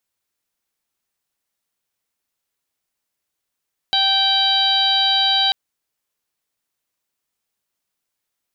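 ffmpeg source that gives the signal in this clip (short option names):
-f lavfi -i "aevalsrc='0.0794*sin(2*PI*780*t)+0.0422*sin(2*PI*1560*t)+0.02*sin(2*PI*2340*t)+0.106*sin(2*PI*3120*t)+0.141*sin(2*PI*3900*t)+0.0562*sin(2*PI*4680*t)':d=1.59:s=44100"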